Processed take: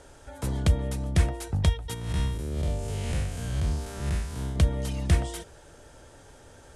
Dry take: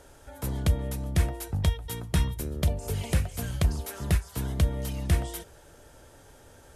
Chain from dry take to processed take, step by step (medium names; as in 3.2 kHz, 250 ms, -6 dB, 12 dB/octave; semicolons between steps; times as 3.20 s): 1.94–4.56 s: spectral blur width 164 ms; low-pass 10 kHz 24 dB/octave; trim +2 dB